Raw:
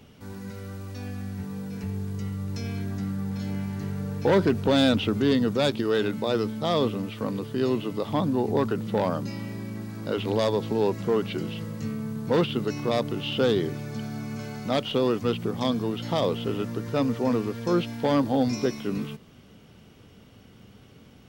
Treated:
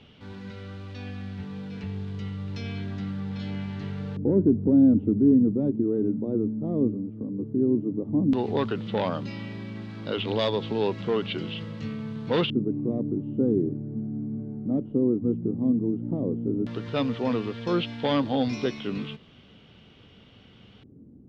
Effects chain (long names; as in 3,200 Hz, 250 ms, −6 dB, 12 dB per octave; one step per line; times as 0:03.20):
0:06.91–0:07.39: downward compressor, threshold −30 dBFS, peak gain reduction 6.5 dB
auto-filter low-pass square 0.12 Hz 300–3,400 Hz
level −2 dB